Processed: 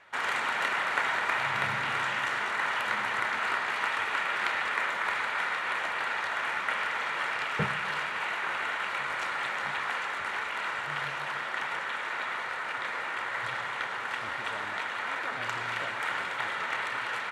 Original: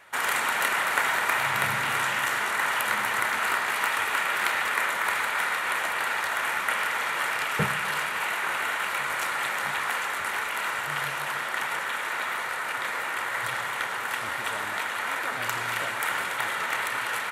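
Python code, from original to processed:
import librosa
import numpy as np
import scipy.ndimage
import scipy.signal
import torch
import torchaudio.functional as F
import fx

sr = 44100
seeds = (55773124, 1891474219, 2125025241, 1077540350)

y = scipy.signal.sosfilt(scipy.signal.butter(2, 4900.0, 'lowpass', fs=sr, output='sos'), x)
y = y * 10.0 ** (-3.5 / 20.0)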